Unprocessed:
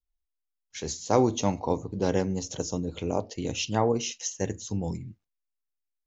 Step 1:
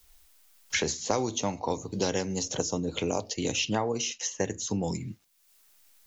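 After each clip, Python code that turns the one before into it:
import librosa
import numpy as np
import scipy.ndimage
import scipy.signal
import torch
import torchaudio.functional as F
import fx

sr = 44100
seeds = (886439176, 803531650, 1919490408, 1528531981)

y = fx.tilt_eq(x, sr, slope=1.5)
y = fx.band_squash(y, sr, depth_pct=100)
y = y * librosa.db_to_amplitude(-1.0)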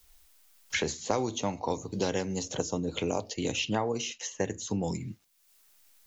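y = fx.dynamic_eq(x, sr, hz=5600.0, q=2.2, threshold_db=-46.0, ratio=4.0, max_db=-6)
y = y * librosa.db_to_amplitude(-1.0)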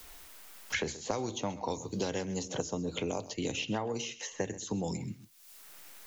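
y = x + 10.0 ** (-17.5 / 20.0) * np.pad(x, (int(129 * sr / 1000.0), 0))[:len(x)]
y = fx.band_squash(y, sr, depth_pct=70)
y = y * librosa.db_to_amplitude(-4.0)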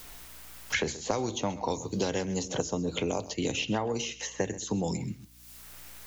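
y = fx.add_hum(x, sr, base_hz=60, snr_db=26)
y = y * librosa.db_to_amplitude(4.0)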